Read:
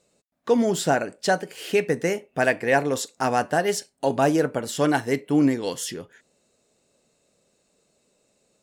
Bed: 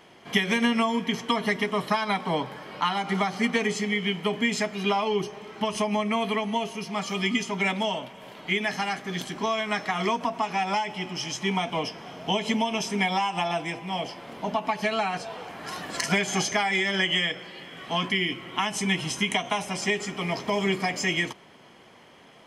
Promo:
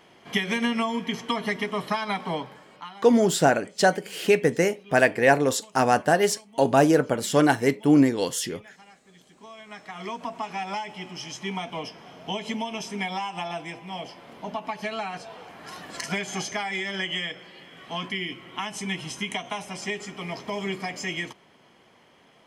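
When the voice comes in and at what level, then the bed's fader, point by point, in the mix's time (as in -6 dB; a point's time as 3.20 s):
2.55 s, +2.0 dB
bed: 2.31 s -2 dB
3.23 s -23.5 dB
9.20 s -23.5 dB
10.30 s -5 dB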